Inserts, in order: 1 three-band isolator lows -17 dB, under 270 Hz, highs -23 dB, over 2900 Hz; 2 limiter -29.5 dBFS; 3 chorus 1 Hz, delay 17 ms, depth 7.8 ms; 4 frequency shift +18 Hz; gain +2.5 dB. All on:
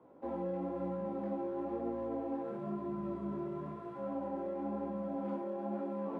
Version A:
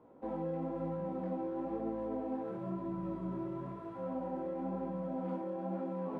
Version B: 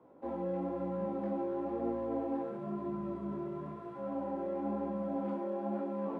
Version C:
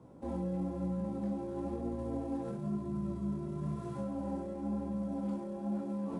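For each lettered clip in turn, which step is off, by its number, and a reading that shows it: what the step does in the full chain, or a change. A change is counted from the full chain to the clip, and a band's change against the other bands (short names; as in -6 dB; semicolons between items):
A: 4, 125 Hz band +3.5 dB; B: 2, momentary loudness spread change +2 LU; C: 1, 125 Hz band +11.0 dB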